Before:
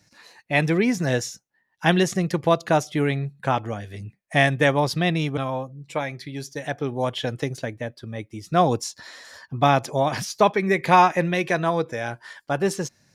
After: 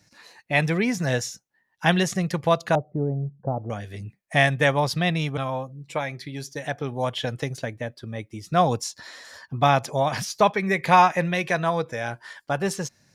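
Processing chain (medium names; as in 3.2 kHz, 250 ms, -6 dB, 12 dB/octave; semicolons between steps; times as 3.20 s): 2.75–3.70 s: inverse Chebyshev low-pass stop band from 3 kHz, stop band 70 dB; dynamic bell 330 Hz, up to -7 dB, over -37 dBFS, Q 1.9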